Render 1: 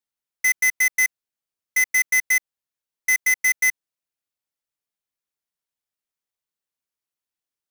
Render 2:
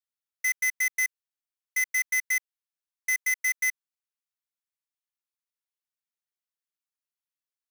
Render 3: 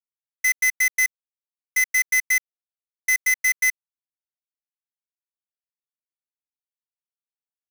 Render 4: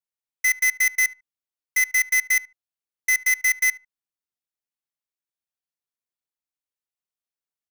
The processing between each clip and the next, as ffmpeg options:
ffmpeg -i in.wav -af "highpass=frequency=960:width=0.5412,highpass=frequency=960:width=1.3066,volume=-7dB" out.wav
ffmpeg -i in.wav -af "acrusher=bits=6:mix=0:aa=0.5,aeval=exprs='0.15*(cos(1*acos(clip(val(0)/0.15,-1,1)))-cos(1*PI/2))+0.00473*(cos(2*acos(clip(val(0)/0.15,-1,1)))-cos(2*PI/2))':channel_layout=same,volume=6dB" out.wav
ffmpeg -i in.wav -filter_complex "[0:a]asplit=2[link_01][link_02];[link_02]adelay=74,lowpass=frequency=1500:poles=1,volume=-16.5dB,asplit=2[link_03][link_04];[link_04]adelay=74,lowpass=frequency=1500:poles=1,volume=0.21[link_05];[link_01][link_03][link_05]amix=inputs=3:normalize=0" out.wav

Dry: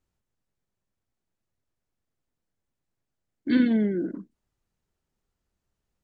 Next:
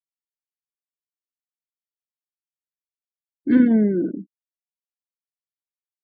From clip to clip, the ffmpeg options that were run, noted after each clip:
ffmpeg -i in.wav -af "afftfilt=real='re*gte(hypot(re,im),0.0112)':imag='im*gte(hypot(re,im),0.0112)':win_size=1024:overlap=0.75,lowpass=1400,volume=6dB" out.wav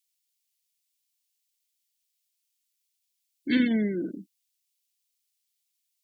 ffmpeg -i in.wav -af "aexciter=amount=10.7:drive=7.1:freq=2000,volume=-8.5dB" out.wav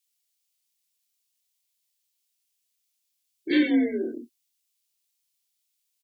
ffmpeg -i in.wav -filter_complex "[0:a]afreqshift=48,asplit=2[link_01][link_02];[link_02]adelay=26,volume=-2dB[link_03];[link_01][link_03]amix=inputs=2:normalize=0" out.wav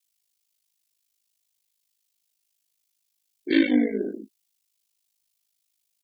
ffmpeg -i in.wav -af "aeval=exprs='val(0)*sin(2*PI*26*n/s)':channel_layout=same,volume=4dB" out.wav

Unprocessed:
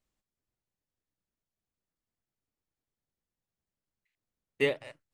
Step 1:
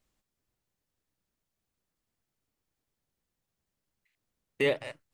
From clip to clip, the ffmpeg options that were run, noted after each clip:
ffmpeg -i in.wav -af "alimiter=limit=-22.5dB:level=0:latency=1:release=15,volume=6dB" out.wav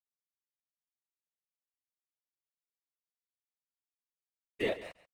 ffmpeg -i in.wav -af "aeval=exprs='sgn(val(0))*max(abs(val(0))-0.00335,0)':channel_layout=same,afftfilt=real='hypot(re,im)*cos(2*PI*random(0))':imag='hypot(re,im)*sin(2*PI*random(1))':win_size=512:overlap=0.75,aecho=1:1:138:0.15" out.wav

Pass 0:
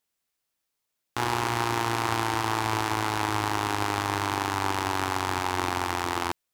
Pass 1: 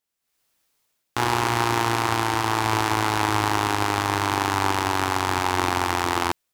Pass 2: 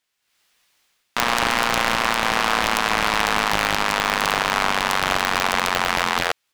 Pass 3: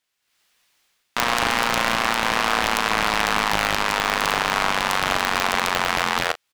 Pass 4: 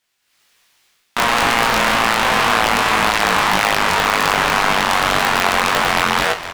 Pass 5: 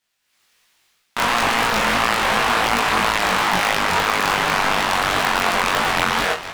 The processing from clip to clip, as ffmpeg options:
ffmpeg -i in.wav -af "dynaudnorm=framelen=210:gausssize=3:maxgain=14dB,volume=-3dB" out.wav
ffmpeg -i in.wav -af "equalizer=frequency=2500:width=0.36:gain=12,alimiter=limit=-2.5dB:level=0:latency=1:release=276,aeval=exprs='val(0)*sgn(sin(2*PI*130*n/s))':channel_layout=same" out.wav
ffmpeg -i in.wav -filter_complex "[0:a]asplit=2[link_01][link_02];[link_02]adelay=37,volume=-13.5dB[link_03];[link_01][link_03]amix=inputs=2:normalize=0,volume=-1dB" out.wav
ffmpeg -i in.wav -filter_complex "[0:a]asplit=7[link_01][link_02][link_03][link_04][link_05][link_06][link_07];[link_02]adelay=458,afreqshift=-57,volume=-15dB[link_08];[link_03]adelay=916,afreqshift=-114,volume=-19.9dB[link_09];[link_04]adelay=1374,afreqshift=-171,volume=-24.8dB[link_10];[link_05]adelay=1832,afreqshift=-228,volume=-29.6dB[link_11];[link_06]adelay=2290,afreqshift=-285,volume=-34.5dB[link_12];[link_07]adelay=2748,afreqshift=-342,volume=-39.4dB[link_13];[link_01][link_08][link_09][link_10][link_11][link_12][link_13]amix=inputs=7:normalize=0,flanger=delay=18.5:depth=4.9:speed=1.9,aeval=exprs='0.631*sin(PI/2*2*val(0)/0.631)':channel_layout=same" out.wav
ffmpeg -i in.wav -af "flanger=delay=17:depth=6.3:speed=2.9" out.wav

